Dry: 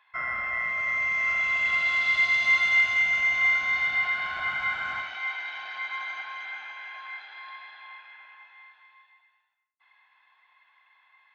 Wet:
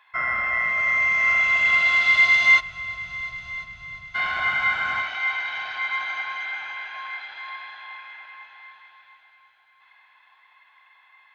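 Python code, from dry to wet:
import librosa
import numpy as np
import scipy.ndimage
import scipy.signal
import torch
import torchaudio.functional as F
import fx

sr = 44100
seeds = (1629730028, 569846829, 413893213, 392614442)

y = fx.cheby2_lowpass(x, sr, hz=540.0, order=4, stop_db=60, at=(2.59, 4.14), fade=0.02)
y = fx.echo_heads(y, sr, ms=347, heads='all three', feedback_pct=52, wet_db=-22.5)
y = y * 10.0 ** (6.0 / 20.0)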